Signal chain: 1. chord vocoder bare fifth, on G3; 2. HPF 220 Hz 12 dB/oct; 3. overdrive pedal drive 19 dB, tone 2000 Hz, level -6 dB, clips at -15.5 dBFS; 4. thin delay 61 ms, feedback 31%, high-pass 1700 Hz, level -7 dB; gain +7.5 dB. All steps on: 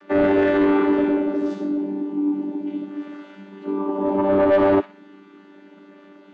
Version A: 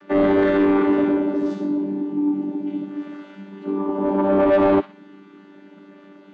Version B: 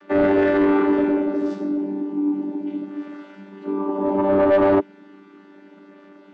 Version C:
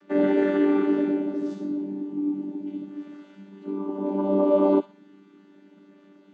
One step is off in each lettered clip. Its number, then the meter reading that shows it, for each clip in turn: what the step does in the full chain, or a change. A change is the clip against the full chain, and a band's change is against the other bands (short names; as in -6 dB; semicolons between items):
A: 2, 125 Hz band +2.5 dB; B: 4, echo-to-direct -10.5 dB to none; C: 3, crest factor change +4.0 dB